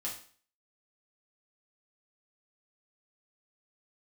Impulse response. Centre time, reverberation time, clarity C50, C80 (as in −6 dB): 26 ms, 0.45 s, 7.0 dB, 11.5 dB